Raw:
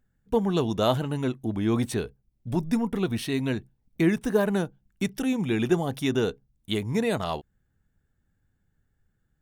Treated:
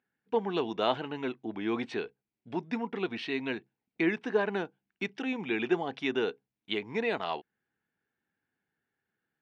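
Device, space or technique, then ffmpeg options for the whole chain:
phone earpiece: -af "highpass=390,equalizer=f=570:t=q:w=4:g=-8,equalizer=f=1.2k:t=q:w=4:g=-4,equalizer=f=2.4k:t=q:w=4:g=3,equalizer=f=3.6k:t=q:w=4:g=-4,lowpass=f=4k:w=0.5412,lowpass=f=4k:w=1.3066"

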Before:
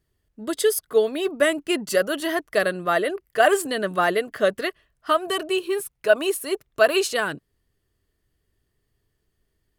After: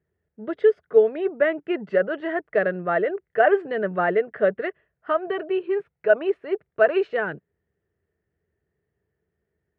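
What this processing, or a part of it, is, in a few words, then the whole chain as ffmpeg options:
bass cabinet: -af "highpass=f=75:w=0.5412,highpass=f=75:w=1.3066,equalizer=f=110:t=q:w=4:g=-8,equalizer=f=180:t=q:w=4:g=3,equalizer=f=270:t=q:w=4:g=-9,equalizer=f=440:t=q:w=4:g=4,equalizer=f=1.1k:t=q:w=4:g=-9,lowpass=f=2k:w=0.5412,lowpass=f=2k:w=1.3066"

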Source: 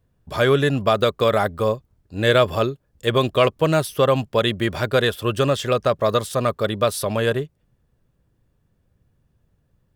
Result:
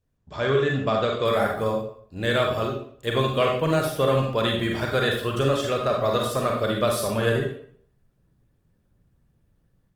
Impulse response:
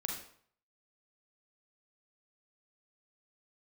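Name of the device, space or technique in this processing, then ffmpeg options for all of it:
speakerphone in a meeting room: -filter_complex "[1:a]atrim=start_sample=2205[a];[0:a][a]afir=irnorm=-1:irlink=0,dynaudnorm=f=260:g=3:m=7dB,volume=-8dB" -ar 48000 -c:a libopus -b:a 24k

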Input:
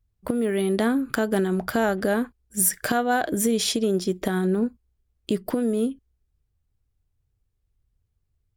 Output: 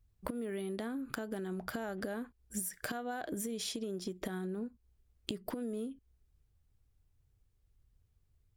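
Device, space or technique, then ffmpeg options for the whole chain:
serial compression, leveller first: -af "acompressor=threshold=-25dB:ratio=2.5,acompressor=threshold=-37dB:ratio=8,volume=1dB"

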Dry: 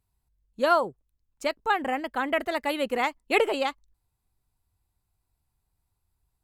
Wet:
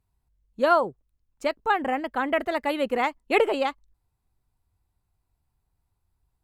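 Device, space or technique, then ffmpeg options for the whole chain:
behind a face mask: -af "highshelf=f=2.9k:g=-7.5,volume=2.5dB"

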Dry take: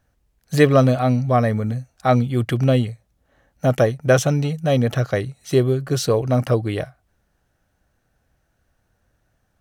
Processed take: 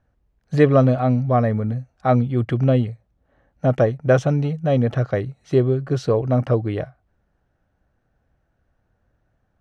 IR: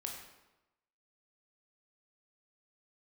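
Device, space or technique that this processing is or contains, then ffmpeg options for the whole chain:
through cloth: -af "lowpass=7.2k,highshelf=f=2.8k:g=-14.5"

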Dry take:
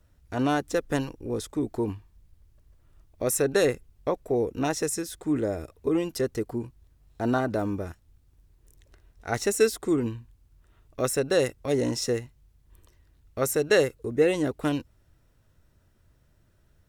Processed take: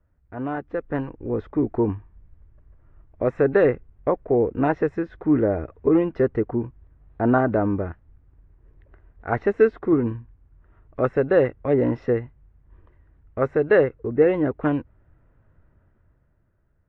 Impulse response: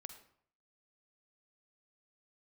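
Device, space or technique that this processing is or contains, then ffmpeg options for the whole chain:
action camera in a waterproof case: -af "lowpass=f=1.9k:w=0.5412,lowpass=f=1.9k:w=1.3066,dynaudnorm=f=130:g=17:m=13dB,volume=-4.5dB" -ar 44100 -c:a aac -b:a 48k

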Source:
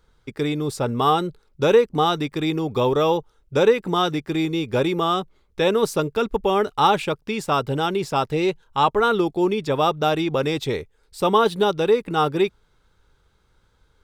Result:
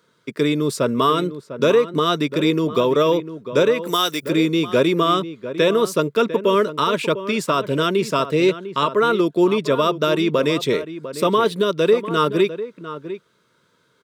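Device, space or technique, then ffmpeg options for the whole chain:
PA system with an anti-feedback notch: -filter_complex "[0:a]asplit=3[a][b][c];[a]afade=t=out:st=3.85:d=0.02[d];[b]aemphasis=mode=production:type=riaa,afade=t=in:st=3.85:d=0.02,afade=t=out:st=4.28:d=0.02[e];[c]afade=t=in:st=4.28:d=0.02[f];[d][e][f]amix=inputs=3:normalize=0,highpass=f=150:w=0.5412,highpass=f=150:w=1.3066,asuperstop=centerf=800:order=8:qfactor=4.2,alimiter=limit=-12.5dB:level=0:latency=1:release=274,asplit=2[g][h];[h]adelay=699.7,volume=-12dB,highshelf=f=4k:g=-15.7[i];[g][i]amix=inputs=2:normalize=0,volume=5dB"

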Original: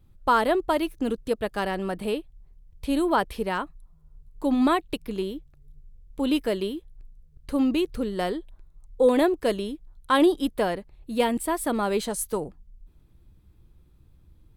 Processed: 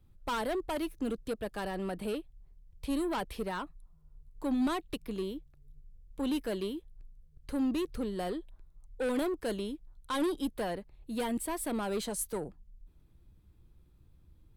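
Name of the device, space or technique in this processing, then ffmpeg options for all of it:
one-band saturation: -filter_complex "[0:a]acrossover=split=220|4200[a][b][c];[b]asoftclip=type=tanh:threshold=-25.5dB[d];[a][d][c]amix=inputs=3:normalize=0,volume=-5dB"

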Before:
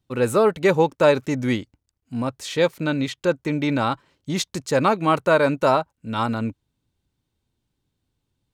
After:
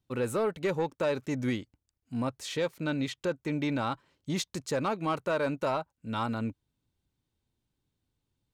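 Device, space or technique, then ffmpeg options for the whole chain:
soft clipper into limiter: -af "asoftclip=type=tanh:threshold=-10.5dB,alimiter=limit=-16.5dB:level=0:latency=1:release=428,volume=-5.5dB"

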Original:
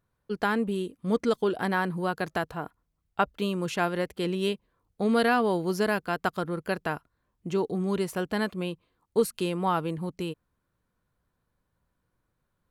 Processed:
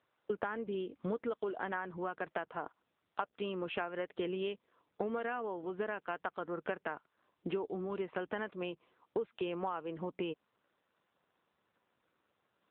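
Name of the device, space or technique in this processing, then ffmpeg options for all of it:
voicemail: -af "highpass=330,lowpass=3.1k,acompressor=threshold=-39dB:ratio=10,volume=6dB" -ar 8000 -c:a libopencore_amrnb -b:a 7950

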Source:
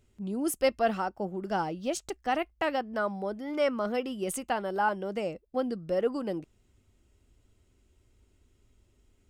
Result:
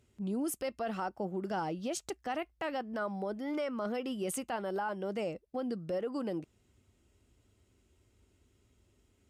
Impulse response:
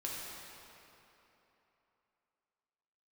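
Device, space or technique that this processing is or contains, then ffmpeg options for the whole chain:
podcast mastering chain: -af "highpass=65,acompressor=threshold=-29dB:ratio=3,alimiter=level_in=2.5dB:limit=-24dB:level=0:latency=1:release=17,volume=-2.5dB" -ar 32000 -c:a libmp3lame -b:a 112k

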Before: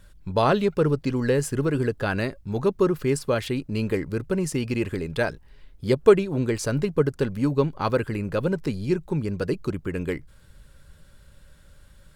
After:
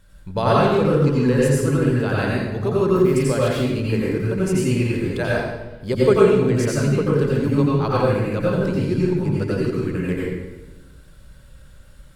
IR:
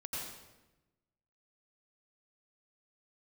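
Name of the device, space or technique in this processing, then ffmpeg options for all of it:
bathroom: -filter_complex "[1:a]atrim=start_sample=2205[a];[0:a][a]afir=irnorm=-1:irlink=0,volume=3.5dB"

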